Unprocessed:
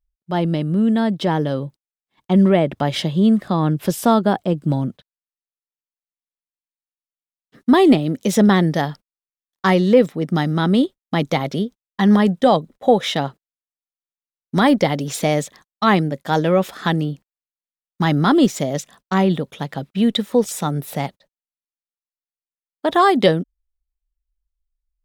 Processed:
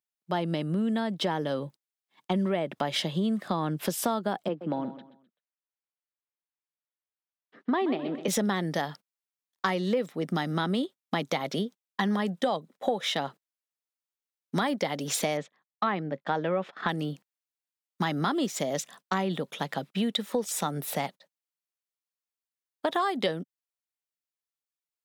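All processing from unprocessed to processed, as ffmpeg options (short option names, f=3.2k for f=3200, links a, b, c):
-filter_complex "[0:a]asettb=1/sr,asplit=3[a][b][c];[a]atrim=end=4.484[d];[b]atrim=start=4.48:end=8.28,asetpts=PTS-STARTPTS,afade=t=in:d=0.004:c=qsin,afade=t=out:st=3.796:d=0.004:c=qsin,highpass=250,lowpass=2.5k,aecho=1:1:128|256|384:0.188|0.064|0.0218,atrim=end_sample=167580[e];[c]atrim=start=8.276[f];[d][e]acrossfade=d=0.004:c1=hsin:c2=qsin[g];[g][f]acrossfade=d=0.004:c1=qsin:c2=hsin,asettb=1/sr,asplit=3[h][i][j];[h]atrim=end=15.374[k];[i]atrim=start=15.37:end=16.89,asetpts=PTS-STARTPTS,afade=t=in:d=0.004:c=qsin,afade=t=out:st=1.516:d=0.004:c=qsin,lowpass=2.5k,agate=range=-18dB:threshold=-38dB:ratio=16:release=100:detection=peak[l];[j]atrim=start=16.886[m];[k][l]acrossfade=d=0.004:c1=hsin:c2=qsin[n];[n][m]acrossfade=d=0.004:c1=qsin:c2=hsin,highpass=f=170:w=0.5412,highpass=f=170:w=1.3066,equalizer=f=260:t=o:w=2:g=-5.5,acompressor=threshold=-25dB:ratio=5"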